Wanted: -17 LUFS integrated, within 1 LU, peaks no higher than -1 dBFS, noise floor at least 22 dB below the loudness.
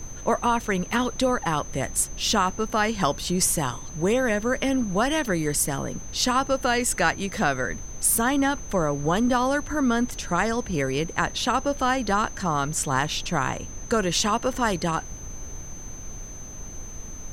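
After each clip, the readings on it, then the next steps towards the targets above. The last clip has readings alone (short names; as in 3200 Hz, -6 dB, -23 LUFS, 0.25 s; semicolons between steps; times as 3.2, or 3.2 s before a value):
steady tone 6200 Hz; tone level -40 dBFS; noise floor -39 dBFS; noise floor target -47 dBFS; loudness -24.5 LUFS; peak -7.5 dBFS; loudness target -17.0 LUFS
-> notch 6200 Hz, Q 30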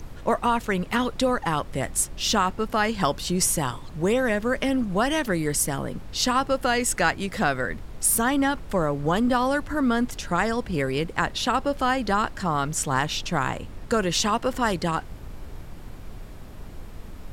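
steady tone none; noise floor -41 dBFS; noise floor target -47 dBFS
-> noise print and reduce 6 dB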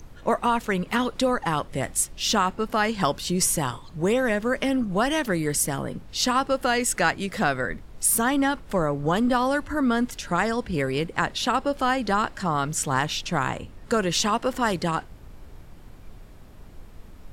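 noise floor -45 dBFS; noise floor target -47 dBFS
-> noise print and reduce 6 dB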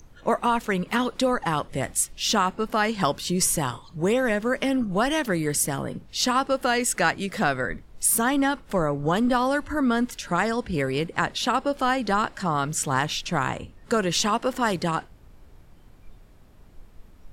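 noise floor -51 dBFS; loudness -24.5 LUFS; peak -7.5 dBFS; loudness target -17.0 LUFS
-> gain +7.5 dB; limiter -1 dBFS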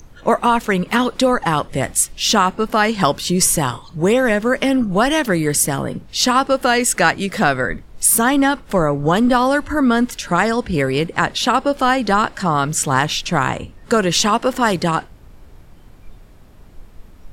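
loudness -17.0 LUFS; peak -1.0 dBFS; noise floor -43 dBFS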